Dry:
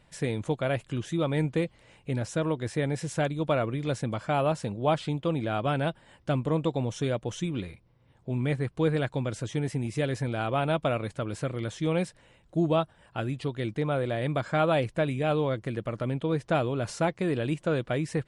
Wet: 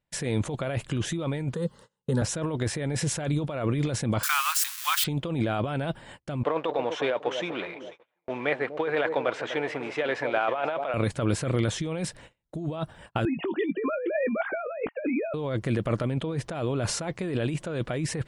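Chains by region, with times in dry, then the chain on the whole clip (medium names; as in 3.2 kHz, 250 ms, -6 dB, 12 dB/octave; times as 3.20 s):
1.54–2.22 s: high-pass 68 Hz + static phaser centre 460 Hz, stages 8
4.23–5.04 s: zero-crossing glitches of -27.5 dBFS + steep high-pass 1.1 kHz 48 dB/octave
6.43–10.94 s: companding laws mixed up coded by mu + Butterworth band-pass 1.2 kHz, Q 0.55 + echo whose repeats swap between lows and highs 245 ms, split 800 Hz, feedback 56%, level -11 dB
13.25–15.34 s: formants replaced by sine waves + doubling 18 ms -10 dB
whole clip: gate -53 dBFS, range -32 dB; compressor with a negative ratio -33 dBFS, ratio -1; trim +5.5 dB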